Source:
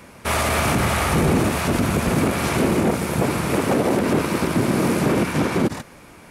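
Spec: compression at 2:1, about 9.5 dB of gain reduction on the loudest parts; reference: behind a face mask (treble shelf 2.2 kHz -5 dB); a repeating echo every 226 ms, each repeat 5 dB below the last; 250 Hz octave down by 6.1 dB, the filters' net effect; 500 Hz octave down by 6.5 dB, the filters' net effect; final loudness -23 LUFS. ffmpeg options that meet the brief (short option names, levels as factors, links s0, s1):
-af "equalizer=f=250:t=o:g=-6.5,equalizer=f=500:t=o:g=-6,acompressor=threshold=0.0158:ratio=2,highshelf=f=2200:g=-5,aecho=1:1:226|452|678|904|1130|1356|1582:0.562|0.315|0.176|0.0988|0.0553|0.031|0.0173,volume=2.82"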